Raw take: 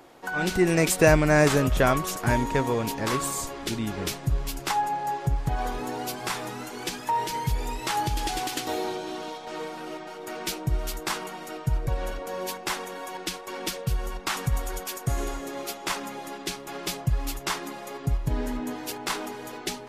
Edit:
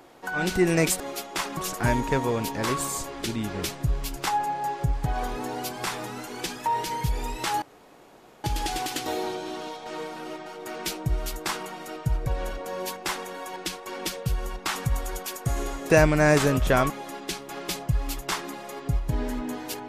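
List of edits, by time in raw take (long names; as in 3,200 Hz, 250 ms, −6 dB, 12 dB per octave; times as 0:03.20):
0:01.00–0:02.00: swap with 0:15.51–0:16.08
0:08.05: splice in room tone 0.82 s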